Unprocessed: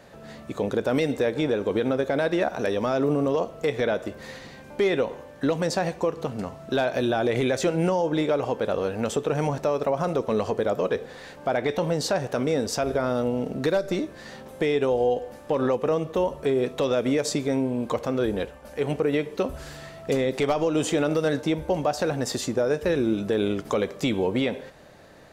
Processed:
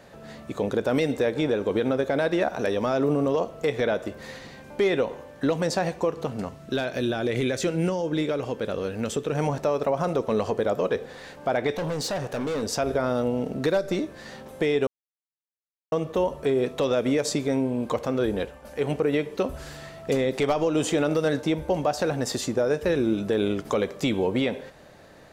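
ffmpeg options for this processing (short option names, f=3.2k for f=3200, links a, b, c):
-filter_complex "[0:a]asettb=1/sr,asplit=3[a][b][c];[a]atrim=end=6.494[d];[b]atrim=start=6.49:end=9.35,asetpts=PTS-STARTPTS,afade=t=in:d=0.004:c=qsin,afade=t=out:st=2.856:d=0.004:c=qsin,equalizer=f=810:t=o:w=1.2:g=-8[e];[c]atrim=start=9.346[f];[d][e]acrossfade=d=0.004:c1=hsin:c2=qsin[g];[g][f]acrossfade=d=0.004:c1=qsin:c2=hsin,asettb=1/sr,asplit=3[h][i][j];[h]atrim=end=11.724[k];[i]atrim=start=11.72:end=12.63,asetpts=PTS-STARTPTS,afade=t=in:d=0.004:c=qsin,afade=t=out:st=0.906:d=0.004:c=qsin,asoftclip=type=hard:threshold=-25dB[l];[j]atrim=start=12.626[m];[k][l]acrossfade=d=0.004:c1=hsin:c2=qsin[n];[n][m]acrossfade=d=0.004:c1=qsin:c2=hsin,asplit=3[o][p][q];[o]atrim=end=14.87,asetpts=PTS-STARTPTS,afade=t=out:st=14.866:d=0.004:c=hsin[r];[p]atrim=start=14.87:end=15.92,asetpts=PTS-STARTPTS,volume=0[s];[q]atrim=start=15.92,asetpts=PTS-STARTPTS,afade=t=in:d=0.004:c=hsin[t];[r][s][t]concat=n=3:v=0:a=1"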